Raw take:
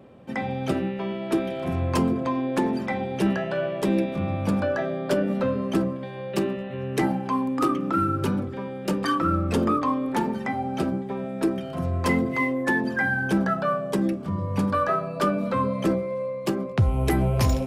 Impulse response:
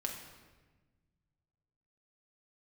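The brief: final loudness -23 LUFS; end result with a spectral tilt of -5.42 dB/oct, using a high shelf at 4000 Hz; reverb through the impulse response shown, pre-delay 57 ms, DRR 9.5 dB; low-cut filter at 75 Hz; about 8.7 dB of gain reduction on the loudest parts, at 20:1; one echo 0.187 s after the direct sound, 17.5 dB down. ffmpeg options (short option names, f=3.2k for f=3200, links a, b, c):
-filter_complex "[0:a]highpass=75,highshelf=f=4k:g=7.5,acompressor=threshold=-26dB:ratio=20,aecho=1:1:187:0.133,asplit=2[a][b];[1:a]atrim=start_sample=2205,adelay=57[c];[b][c]afir=irnorm=-1:irlink=0,volume=-10.5dB[d];[a][d]amix=inputs=2:normalize=0,volume=7dB"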